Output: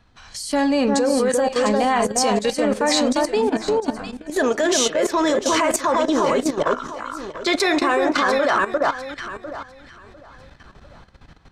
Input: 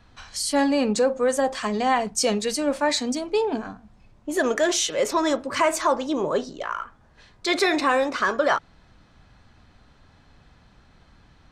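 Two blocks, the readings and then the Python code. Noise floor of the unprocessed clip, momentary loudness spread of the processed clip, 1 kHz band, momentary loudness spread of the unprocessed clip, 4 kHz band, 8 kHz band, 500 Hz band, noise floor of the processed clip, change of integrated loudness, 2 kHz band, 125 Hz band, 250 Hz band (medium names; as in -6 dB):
-56 dBFS, 13 LU, +4.0 dB, 10 LU, +3.5 dB, +3.5 dB, +4.0 dB, -49 dBFS, +3.5 dB, +3.5 dB, +5.0 dB, +5.0 dB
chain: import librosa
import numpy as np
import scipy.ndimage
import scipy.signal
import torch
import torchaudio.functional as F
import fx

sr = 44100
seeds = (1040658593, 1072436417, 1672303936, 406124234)

y = fx.echo_alternate(x, sr, ms=350, hz=1600.0, feedback_pct=54, wet_db=-3)
y = fx.level_steps(y, sr, step_db=13)
y = y * 10.0 ** (8.0 / 20.0)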